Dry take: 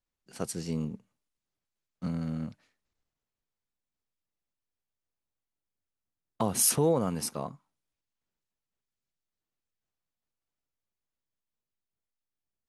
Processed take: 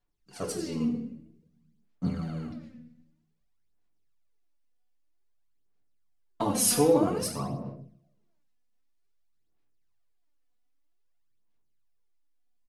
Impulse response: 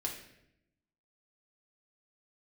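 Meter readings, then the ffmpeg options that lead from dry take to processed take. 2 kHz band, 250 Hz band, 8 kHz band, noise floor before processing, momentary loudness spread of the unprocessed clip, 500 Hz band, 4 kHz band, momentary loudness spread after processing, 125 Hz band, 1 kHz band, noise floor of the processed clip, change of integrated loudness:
+3.0 dB, +4.0 dB, 0.0 dB, below −85 dBFS, 16 LU, +3.5 dB, +2.5 dB, 18 LU, 0.0 dB, +3.0 dB, −70 dBFS, +1.5 dB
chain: -filter_complex "[0:a]highshelf=frequency=6700:gain=-4.5,aecho=1:1:93:0.178[link_01];[1:a]atrim=start_sample=2205[link_02];[link_01][link_02]afir=irnorm=-1:irlink=0,aphaser=in_gain=1:out_gain=1:delay=4.1:decay=0.61:speed=0.52:type=sinusoidal"

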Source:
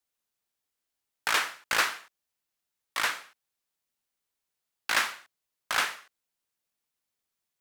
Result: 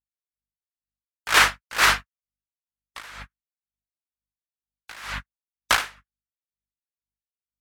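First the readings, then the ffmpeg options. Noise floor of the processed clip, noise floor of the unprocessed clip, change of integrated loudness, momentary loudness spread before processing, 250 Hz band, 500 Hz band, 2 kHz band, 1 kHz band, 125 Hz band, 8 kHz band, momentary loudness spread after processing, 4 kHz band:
below −85 dBFS, below −85 dBFS, +9.0 dB, 14 LU, +7.5 dB, +5.5 dB, +6.0 dB, +6.5 dB, can't be measured, +6.0 dB, 21 LU, +6.0 dB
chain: -af "aeval=exprs='val(0)+0.00355*(sin(2*PI*50*n/s)+sin(2*PI*2*50*n/s)/2+sin(2*PI*3*50*n/s)/3+sin(2*PI*4*50*n/s)/4+sin(2*PI*5*50*n/s)/5)':channel_layout=same,agate=range=-42dB:threshold=-40dB:ratio=16:detection=peak,afftdn=noise_reduction=23:noise_floor=-52,alimiter=level_in=22.5dB:limit=-1dB:release=50:level=0:latency=1,aeval=exprs='val(0)*pow(10,-29*(0.5-0.5*cos(2*PI*2.1*n/s))/20)':channel_layout=same,volume=-3dB"

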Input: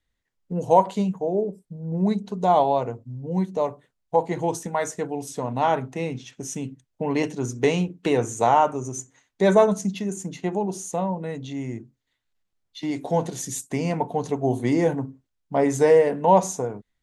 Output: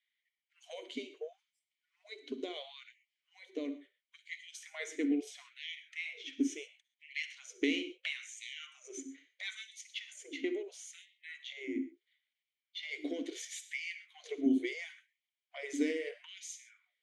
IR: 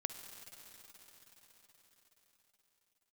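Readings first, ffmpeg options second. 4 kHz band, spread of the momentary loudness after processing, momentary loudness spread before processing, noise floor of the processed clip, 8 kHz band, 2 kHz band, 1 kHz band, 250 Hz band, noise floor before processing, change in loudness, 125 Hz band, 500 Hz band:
−3.0 dB, 16 LU, 13 LU, below −85 dBFS, −13.5 dB, −6.0 dB, −37.5 dB, −12.0 dB, −78 dBFS, −16.0 dB, below −40 dB, −21.5 dB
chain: -filter_complex "[0:a]acrossover=split=3200[link_01][link_02];[link_01]acompressor=threshold=-27dB:ratio=8[link_03];[link_03][link_02]amix=inputs=2:normalize=0,aeval=exprs='val(0)+0.000562*(sin(2*PI*50*n/s)+sin(2*PI*2*50*n/s)/2+sin(2*PI*3*50*n/s)/3+sin(2*PI*4*50*n/s)/4+sin(2*PI*5*50*n/s)/5)':channel_layout=same,asplit=3[link_04][link_05][link_06];[link_04]bandpass=frequency=270:width_type=q:width=8,volume=0dB[link_07];[link_05]bandpass=frequency=2290:width_type=q:width=8,volume=-6dB[link_08];[link_06]bandpass=frequency=3010:width_type=q:width=8,volume=-9dB[link_09];[link_07][link_08][link_09]amix=inputs=3:normalize=0[link_10];[1:a]atrim=start_sample=2205,atrim=end_sample=6174[link_11];[link_10][link_11]afir=irnorm=-1:irlink=0,afftfilt=real='re*gte(b*sr/1024,250*pow(1800/250,0.5+0.5*sin(2*PI*0.74*pts/sr)))':imag='im*gte(b*sr/1024,250*pow(1800/250,0.5+0.5*sin(2*PI*0.74*pts/sr)))':win_size=1024:overlap=0.75,volume=14dB"

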